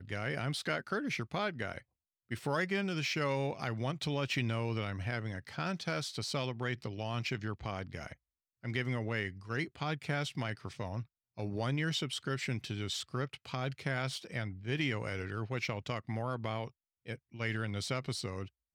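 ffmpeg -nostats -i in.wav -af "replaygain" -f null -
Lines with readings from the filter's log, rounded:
track_gain = +17.6 dB
track_peak = 0.067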